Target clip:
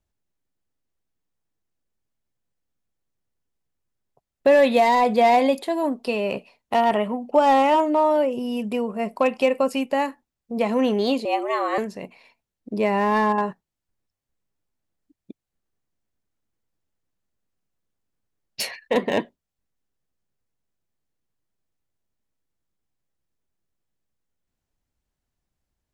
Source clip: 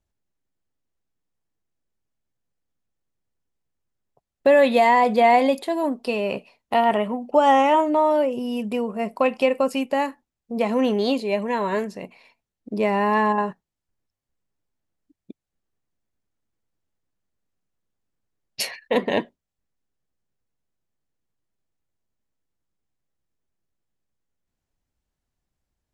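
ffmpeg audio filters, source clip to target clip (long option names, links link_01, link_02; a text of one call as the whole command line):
ffmpeg -i in.wav -filter_complex "[0:a]acrossover=split=840[link_01][link_02];[link_02]asoftclip=type=hard:threshold=-20.5dB[link_03];[link_01][link_03]amix=inputs=2:normalize=0,asettb=1/sr,asplit=3[link_04][link_05][link_06];[link_04]atrim=end=11.254[link_07];[link_05]atrim=start=11.25:end=11.78,asetpts=PTS-STARTPTS,afade=type=in:duration=0.004:curve=qsin,afade=type=out:start_time=0.526:duration=0.004:curve=qsin,afreqshift=150[link_08];[link_06]atrim=start=11.776[link_09];[link_07][link_08]acrossfade=duration=0.004:curve1=hsin:curve2=qsin[link_10];[link_10][link_09]acrossfade=duration=0.004:curve1=qsin:curve2=hsin" out.wav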